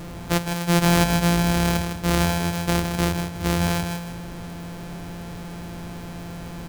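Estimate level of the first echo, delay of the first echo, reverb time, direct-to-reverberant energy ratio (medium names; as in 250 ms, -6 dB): -7.0 dB, 158 ms, no reverb, no reverb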